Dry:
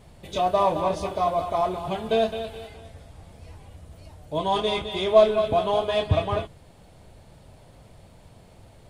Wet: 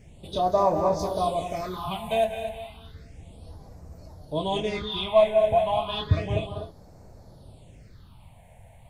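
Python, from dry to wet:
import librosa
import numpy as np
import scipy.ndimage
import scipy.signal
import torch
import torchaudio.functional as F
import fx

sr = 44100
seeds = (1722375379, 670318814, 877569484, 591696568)

y = fx.high_shelf(x, sr, hz=5200.0, db=10.5, at=(0.99, 2.25))
y = fx.echo_multitap(y, sr, ms=(190, 246), db=(-11.5, -10.5))
y = fx.phaser_stages(y, sr, stages=6, low_hz=330.0, high_hz=3100.0, hz=0.32, feedback_pct=25)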